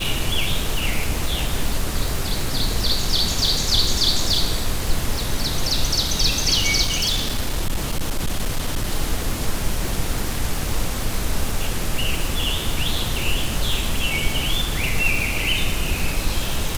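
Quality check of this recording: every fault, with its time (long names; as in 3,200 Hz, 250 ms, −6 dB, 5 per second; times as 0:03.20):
surface crackle 370 per second −24 dBFS
0:06.85–0:08.91: clipping −17 dBFS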